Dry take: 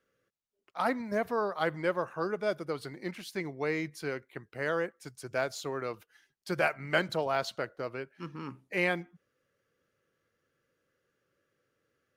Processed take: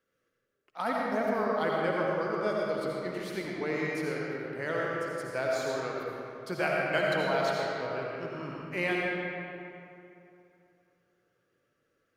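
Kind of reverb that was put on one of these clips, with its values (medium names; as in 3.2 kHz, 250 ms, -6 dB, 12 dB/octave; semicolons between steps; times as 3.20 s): algorithmic reverb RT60 2.8 s, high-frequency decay 0.6×, pre-delay 40 ms, DRR -3.5 dB; trim -3 dB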